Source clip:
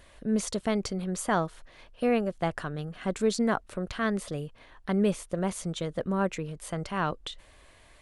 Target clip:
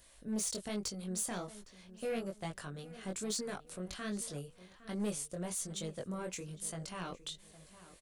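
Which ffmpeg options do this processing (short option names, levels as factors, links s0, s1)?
-filter_complex "[0:a]bass=f=250:g=0,treble=f=4000:g=15,acrossover=split=580|1600[s0][s1][s2];[s1]alimiter=level_in=1.5:limit=0.0631:level=0:latency=1,volume=0.668[s3];[s0][s3][s2]amix=inputs=3:normalize=0,asoftclip=type=tanh:threshold=0.141,flanger=delay=19:depth=3.7:speed=1.2,asoftclip=type=hard:threshold=0.0668,asplit=2[s4][s5];[s5]adelay=810,lowpass=f=2800:p=1,volume=0.158,asplit=2[s6][s7];[s7]adelay=810,lowpass=f=2800:p=1,volume=0.36,asplit=2[s8][s9];[s9]adelay=810,lowpass=f=2800:p=1,volume=0.36[s10];[s6][s8][s10]amix=inputs=3:normalize=0[s11];[s4][s11]amix=inputs=2:normalize=0,volume=0.422"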